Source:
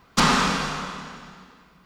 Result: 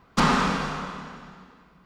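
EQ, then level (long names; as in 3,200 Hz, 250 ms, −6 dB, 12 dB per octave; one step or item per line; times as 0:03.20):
high-shelf EQ 2,600 Hz −9.5 dB
0.0 dB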